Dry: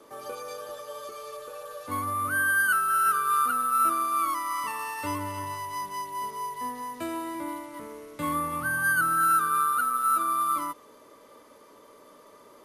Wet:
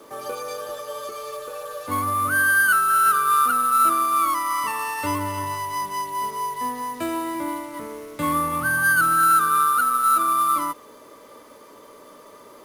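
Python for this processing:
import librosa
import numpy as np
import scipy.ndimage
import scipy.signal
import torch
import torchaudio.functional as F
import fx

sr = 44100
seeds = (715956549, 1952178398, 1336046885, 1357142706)

p1 = 10.0 ** (-24.5 / 20.0) * np.tanh(x / 10.0 ** (-24.5 / 20.0))
p2 = x + (p1 * librosa.db_to_amplitude(-9.0))
p3 = fx.quant_companded(p2, sr, bits=6)
y = p3 * librosa.db_to_amplitude(4.0)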